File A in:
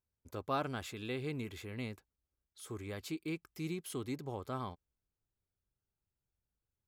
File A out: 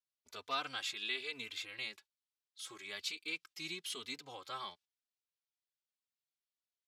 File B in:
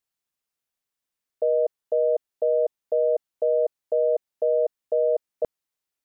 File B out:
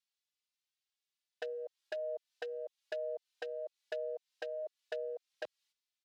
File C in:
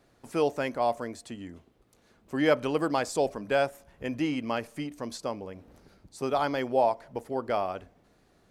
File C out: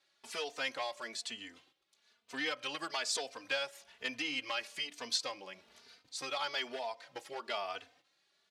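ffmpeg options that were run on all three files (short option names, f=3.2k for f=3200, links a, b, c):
-filter_complex "[0:a]agate=range=-10dB:threshold=-59dB:ratio=16:detection=peak,acompressor=threshold=-29dB:ratio=8,asoftclip=type=hard:threshold=-25dB,bandpass=f=3.8k:t=q:w=1.3:csg=0,asplit=2[a][b];[b]adelay=3.2,afreqshift=1.1[c];[a][c]amix=inputs=2:normalize=1,volume=14dB"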